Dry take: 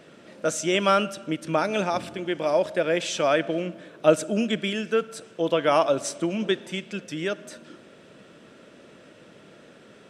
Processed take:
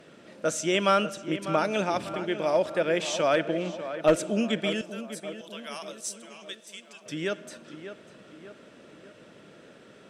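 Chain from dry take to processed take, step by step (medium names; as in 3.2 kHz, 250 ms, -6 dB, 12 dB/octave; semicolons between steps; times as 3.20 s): 4.81–7.06 s: differentiator; one-sided clip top -13.5 dBFS; tape echo 595 ms, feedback 55%, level -10.5 dB, low-pass 2.6 kHz; trim -2 dB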